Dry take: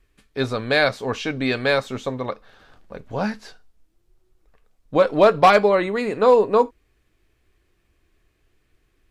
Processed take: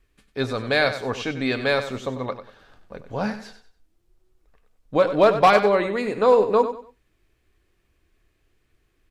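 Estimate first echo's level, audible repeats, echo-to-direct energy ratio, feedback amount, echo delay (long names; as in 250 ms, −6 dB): −11.0 dB, 3, −10.5 dB, 28%, 95 ms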